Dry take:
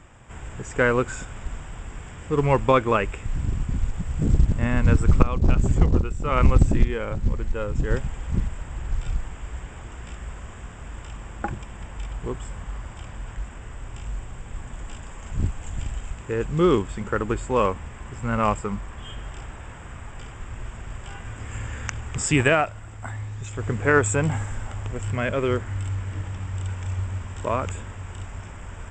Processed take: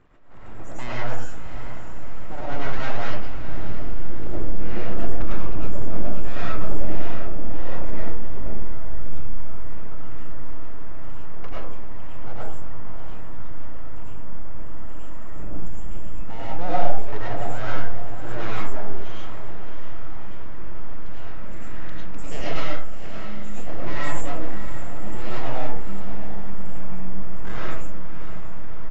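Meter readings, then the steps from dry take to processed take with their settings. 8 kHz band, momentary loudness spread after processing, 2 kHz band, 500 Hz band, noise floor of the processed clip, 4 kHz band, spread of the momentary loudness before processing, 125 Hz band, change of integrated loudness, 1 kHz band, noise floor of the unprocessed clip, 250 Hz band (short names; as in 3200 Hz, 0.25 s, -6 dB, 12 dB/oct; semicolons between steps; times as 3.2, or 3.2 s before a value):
-14.5 dB, 12 LU, -8.0 dB, -8.5 dB, -18 dBFS, -3.5 dB, 19 LU, -7.0 dB, -10.5 dB, -5.0 dB, -40 dBFS, -7.5 dB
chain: in parallel at 0 dB: compressor, threshold -28 dBFS, peak gain reduction 18.5 dB; on the sum: soft clip -12 dBFS, distortion -13 dB; loudest bins only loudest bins 64; small resonant body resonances 210/350/960 Hz, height 7 dB, ringing for 35 ms; full-wave rectifier; diffused feedback echo 0.649 s, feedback 53%, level -10.5 dB; digital reverb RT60 0.54 s, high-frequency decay 0.45×, pre-delay 65 ms, DRR -7 dB; downsampling 16000 Hz; attack slew limiter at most 100 dB/s; gain -15 dB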